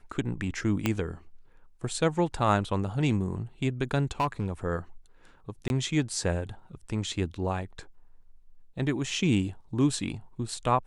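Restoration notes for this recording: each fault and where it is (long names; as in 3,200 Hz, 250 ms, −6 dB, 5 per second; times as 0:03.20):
0:00.86: click −11 dBFS
0:04.20–0:04.51: clipping −21.5 dBFS
0:05.68–0:05.70: drop-out 21 ms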